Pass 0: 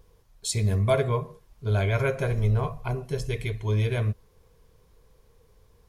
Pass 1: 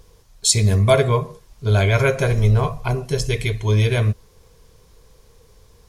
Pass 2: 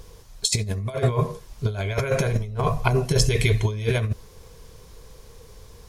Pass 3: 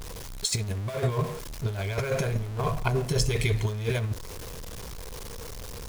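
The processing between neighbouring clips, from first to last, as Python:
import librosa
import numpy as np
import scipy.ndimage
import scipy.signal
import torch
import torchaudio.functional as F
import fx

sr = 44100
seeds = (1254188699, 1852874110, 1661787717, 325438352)

y1 = fx.peak_eq(x, sr, hz=6100.0, db=7.0, octaves=1.8)
y1 = y1 * librosa.db_to_amplitude(7.5)
y2 = fx.over_compress(y1, sr, threshold_db=-21.0, ratio=-0.5)
y3 = y2 + 0.5 * 10.0 ** (-27.5 / 20.0) * np.sign(y2)
y3 = y3 * librosa.db_to_amplitude(-6.5)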